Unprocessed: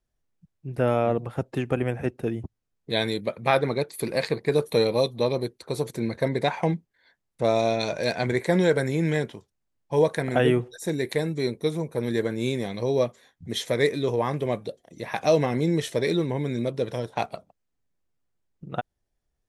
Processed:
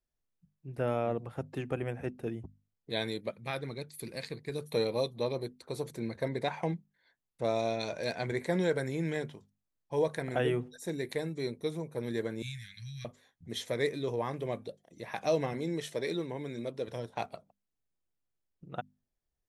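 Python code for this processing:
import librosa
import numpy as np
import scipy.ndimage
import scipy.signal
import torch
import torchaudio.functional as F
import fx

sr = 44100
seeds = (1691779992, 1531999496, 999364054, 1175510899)

y = fx.peak_eq(x, sr, hz=740.0, db=-9.5, octaves=2.7, at=(3.31, 4.71))
y = fx.cheby1_bandstop(y, sr, low_hz=160.0, high_hz=1600.0, order=4, at=(12.42, 13.05))
y = fx.highpass(y, sr, hz=210.0, slope=6, at=(15.53, 16.88))
y = fx.hum_notches(y, sr, base_hz=50, count=5)
y = y * librosa.db_to_amplitude(-8.5)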